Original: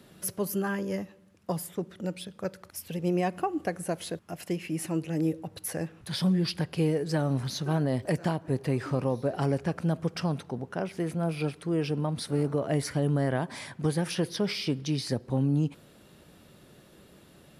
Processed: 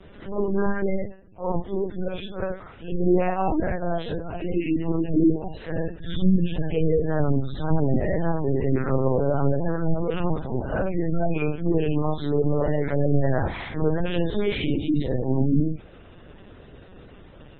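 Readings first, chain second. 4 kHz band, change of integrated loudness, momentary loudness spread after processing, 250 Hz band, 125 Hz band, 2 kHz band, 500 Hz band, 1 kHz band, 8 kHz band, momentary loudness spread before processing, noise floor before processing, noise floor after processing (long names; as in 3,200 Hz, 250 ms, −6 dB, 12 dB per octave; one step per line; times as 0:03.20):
−2.5 dB, +5.0 dB, 9 LU, +5.5 dB, +4.0 dB, +3.5 dB, +6.5 dB, +5.0 dB, below −40 dB, 9 LU, −56 dBFS, −47 dBFS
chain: random phases in long frames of 200 ms
backwards echo 35 ms −23 dB
in parallel at +1 dB: brickwall limiter −24.5 dBFS, peak gain reduction 10.5 dB
on the sum: linear-prediction vocoder at 8 kHz pitch kept
gate on every frequency bin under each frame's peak −30 dB strong
high-frequency loss of the air 150 metres
level +3 dB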